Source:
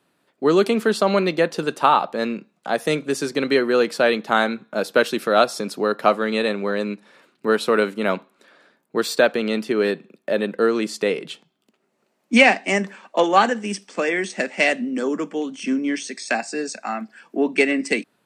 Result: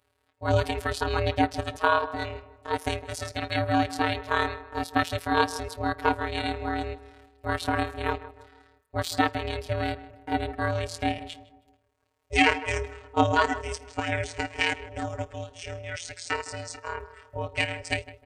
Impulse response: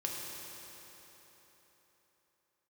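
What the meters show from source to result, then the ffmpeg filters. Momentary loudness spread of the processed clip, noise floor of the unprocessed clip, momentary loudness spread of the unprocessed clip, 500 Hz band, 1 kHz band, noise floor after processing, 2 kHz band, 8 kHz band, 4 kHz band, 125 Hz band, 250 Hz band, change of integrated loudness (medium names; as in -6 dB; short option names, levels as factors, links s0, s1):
12 LU, -70 dBFS, 10 LU, -11.0 dB, -4.5 dB, -72 dBFS, -6.5 dB, -6.5 dB, -5.0 dB, +3.5 dB, -9.0 dB, -7.5 dB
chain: -filter_complex "[0:a]afftfilt=real='hypot(re,im)*cos(PI*b)':imag='0':win_size=1024:overlap=0.75,asplit=2[s0][s1];[s1]adelay=158,lowpass=f=1400:p=1,volume=0.2,asplit=2[s2][s3];[s3]adelay=158,lowpass=f=1400:p=1,volume=0.46,asplit=2[s4][s5];[s5]adelay=158,lowpass=f=1400:p=1,volume=0.46,asplit=2[s6][s7];[s7]adelay=158,lowpass=f=1400:p=1,volume=0.46[s8];[s0][s2][s4][s6][s8]amix=inputs=5:normalize=0,aeval=exprs='val(0)*sin(2*PI*240*n/s)':c=same"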